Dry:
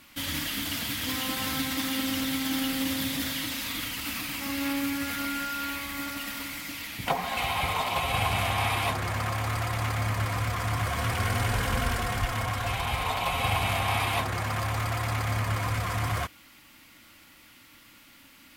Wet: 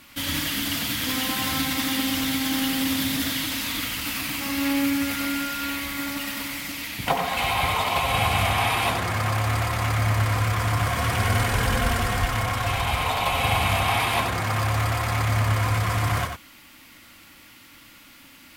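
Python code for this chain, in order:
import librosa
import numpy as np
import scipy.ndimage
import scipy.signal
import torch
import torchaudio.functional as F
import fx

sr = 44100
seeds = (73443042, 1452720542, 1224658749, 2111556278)

y = x + 10.0 ** (-6.5 / 20.0) * np.pad(x, (int(93 * sr / 1000.0), 0))[:len(x)]
y = y * 10.0 ** (4.0 / 20.0)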